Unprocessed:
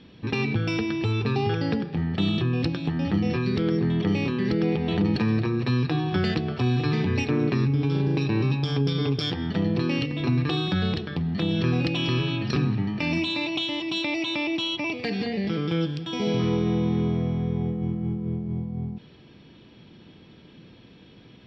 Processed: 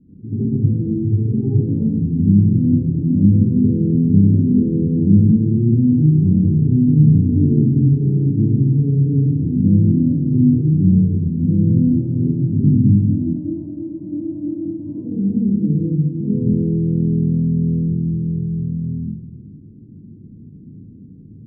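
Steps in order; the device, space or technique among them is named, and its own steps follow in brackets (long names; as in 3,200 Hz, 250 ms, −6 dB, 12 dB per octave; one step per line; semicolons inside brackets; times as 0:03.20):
next room (low-pass filter 280 Hz 24 dB per octave; convolution reverb RT60 1.0 s, pre-delay 71 ms, DRR −10 dB)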